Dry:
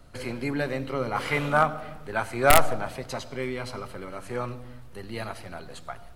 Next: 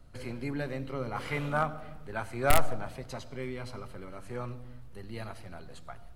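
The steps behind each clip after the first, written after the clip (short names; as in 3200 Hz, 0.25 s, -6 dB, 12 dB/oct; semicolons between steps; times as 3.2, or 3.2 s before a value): low shelf 210 Hz +7.5 dB; gain -8.5 dB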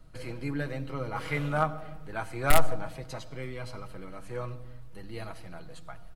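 comb 6.3 ms, depth 54%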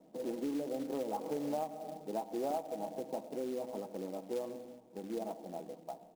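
elliptic band-pass 210–830 Hz, stop band 40 dB; compressor 10:1, threshold -39 dBFS, peak gain reduction 17 dB; short-mantissa float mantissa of 2-bit; gain +6 dB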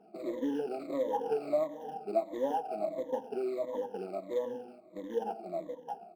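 moving spectral ripple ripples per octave 1.1, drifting -1.5 Hz, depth 24 dB; tone controls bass -8 dB, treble -15 dB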